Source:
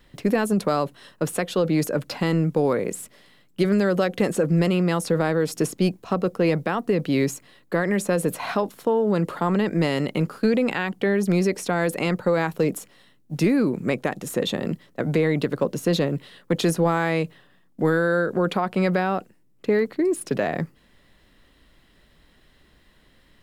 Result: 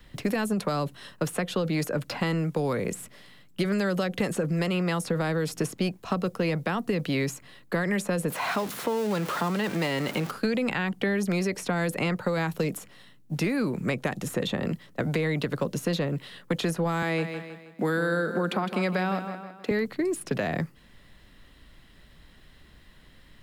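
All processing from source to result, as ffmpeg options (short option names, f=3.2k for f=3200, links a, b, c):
-filter_complex "[0:a]asettb=1/sr,asplit=3[a][b][c];[a]atrim=end=8.304[d];[b]atrim=start=8.3:end=10.31,asetpts=PTS-STARTPTS,afade=t=in:d=0.004:c=qsin,afade=t=out:st=2.006:d=0.004:c=qsin,aeval=exprs='val(0)+0.5*0.0335*sgn(val(0))':c=same,highpass=f=370:p=1[e];[c]atrim=start=10.306[f];[d][e]acrossfade=d=0.004:c1=hsin:c2=qsin[g];[g][f]acrossfade=d=0.004:c1=qsin:c2=hsin,asettb=1/sr,asplit=3[h][i][j];[h]atrim=end=17.024[k];[i]atrim=start=17.02:end=19.71,asetpts=PTS-STARTPTS,afade=t=in:d=0.004:c=qsin,afade=t=out:st=2.686:d=0.004:c=qsin,highpass=f=190:w=0.5412,highpass=f=190:w=1.3066,aecho=1:1:159|318|477|636:0.251|0.108|0.0464|0.02,atrim=end_sample=118629[l];[j]atrim=start=19.706[m];[k][l]acrossfade=d=0.004:c1=hsin:c2=qsin[n];[n][m]acrossfade=d=0.004:c1=qsin:c2=hsin,bass=f=250:g=12,treble=f=4k:g=-1,acrossover=split=210|420|2800[o][p][q][r];[o]acompressor=threshold=-26dB:ratio=4[s];[p]acompressor=threshold=-32dB:ratio=4[t];[q]acompressor=threshold=-29dB:ratio=4[u];[r]acompressor=threshold=-41dB:ratio=4[v];[s][t][u][v]amix=inputs=4:normalize=0,lowshelf=f=410:g=-10,volume=3dB"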